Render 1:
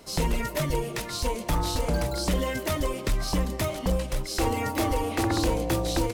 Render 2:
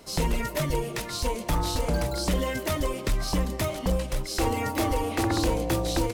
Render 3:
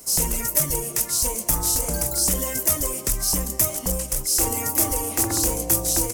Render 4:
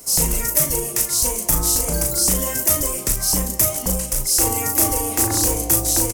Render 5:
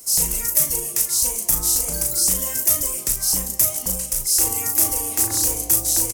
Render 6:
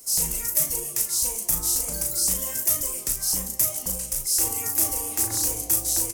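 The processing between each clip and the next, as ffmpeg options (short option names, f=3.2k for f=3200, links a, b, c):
-af anull
-af "aexciter=amount=9.5:drive=4.7:freq=5.6k,volume=-2dB"
-filter_complex "[0:a]asplit=2[a][b];[b]adelay=37,volume=-6dB[c];[a][c]amix=inputs=2:normalize=0,volume=2.5dB"
-af "highshelf=f=2.6k:g=9,volume=-8.5dB"
-af "flanger=delay=6.6:depth=9.5:regen=72:speed=1.1:shape=triangular"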